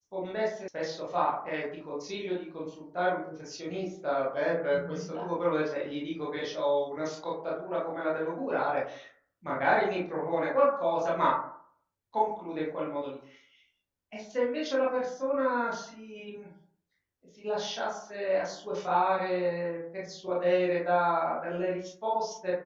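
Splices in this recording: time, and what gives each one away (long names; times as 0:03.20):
0:00.68: cut off before it has died away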